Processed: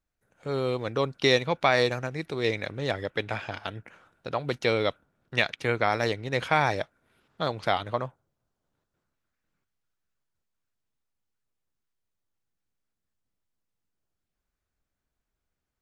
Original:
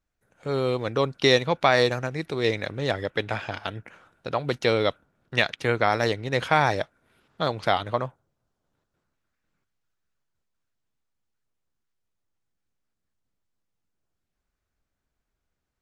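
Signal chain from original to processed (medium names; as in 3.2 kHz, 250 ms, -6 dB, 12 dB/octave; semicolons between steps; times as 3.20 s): dynamic bell 2.3 kHz, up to +4 dB, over -42 dBFS, Q 7.5; trim -3 dB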